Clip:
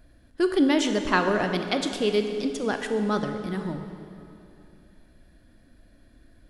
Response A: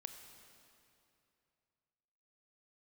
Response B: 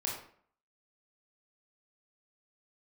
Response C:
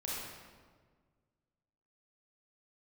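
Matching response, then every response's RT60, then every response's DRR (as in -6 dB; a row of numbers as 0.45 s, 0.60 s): A; 2.7 s, 0.55 s, 1.6 s; 6.0 dB, -3.0 dB, -6.5 dB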